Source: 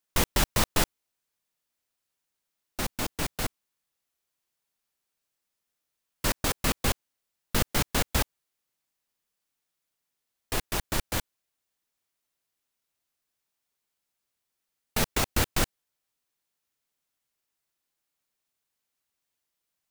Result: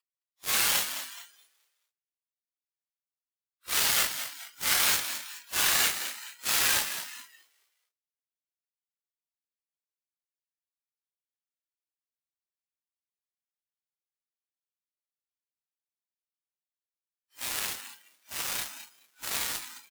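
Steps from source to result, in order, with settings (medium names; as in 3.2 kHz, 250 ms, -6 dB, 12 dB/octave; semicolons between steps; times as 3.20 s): Paulstretch 4.6×, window 0.05 s, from 6.74 s; high-pass 1.4 kHz 12 dB/octave; Chebyshev shaper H 7 -15 dB, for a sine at -15.5 dBFS; frequency-shifting echo 213 ms, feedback 44%, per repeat +79 Hz, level -10 dB; spectral noise reduction 14 dB; trim +5.5 dB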